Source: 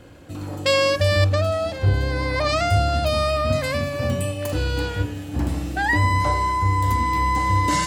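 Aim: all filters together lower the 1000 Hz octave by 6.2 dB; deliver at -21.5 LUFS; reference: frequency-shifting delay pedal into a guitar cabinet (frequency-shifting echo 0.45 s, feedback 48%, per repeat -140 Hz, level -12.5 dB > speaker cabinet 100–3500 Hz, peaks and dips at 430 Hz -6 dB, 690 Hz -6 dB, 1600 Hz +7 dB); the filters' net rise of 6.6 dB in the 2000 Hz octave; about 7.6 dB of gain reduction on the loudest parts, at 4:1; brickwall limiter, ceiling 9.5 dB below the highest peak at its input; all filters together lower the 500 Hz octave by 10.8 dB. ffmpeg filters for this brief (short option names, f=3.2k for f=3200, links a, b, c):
-filter_complex "[0:a]equalizer=f=500:t=o:g=-7,equalizer=f=1k:t=o:g=-7,equalizer=f=2k:t=o:g=6.5,acompressor=threshold=-23dB:ratio=4,alimiter=limit=-19.5dB:level=0:latency=1,asplit=6[a][b][c][d][e][f];[b]adelay=450,afreqshift=-140,volume=-12.5dB[g];[c]adelay=900,afreqshift=-280,volume=-18.9dB[h];[d]adelay=1350,afreqshift=-420,volume=-25.3dB[i];[e]adelay=1800,afreqshift=-560,volume=-31.6dB[j];[f]adelay=2250,afreqshift=-700,volume=-38dB[k];[a][g][h][i][j][k]amix=inputs=6:normalize=0,highpass=100,equalizer=f=430:t=q:w=4:g=-6,equalizer=f=690:t=q:w=4:g=-6,equalizer=f=1.6k:t=q:w=4:g=7,lowpass=f=3.5k:w=0.5412,lowpass=f=3.5k:w=1.3066,volume=7dB"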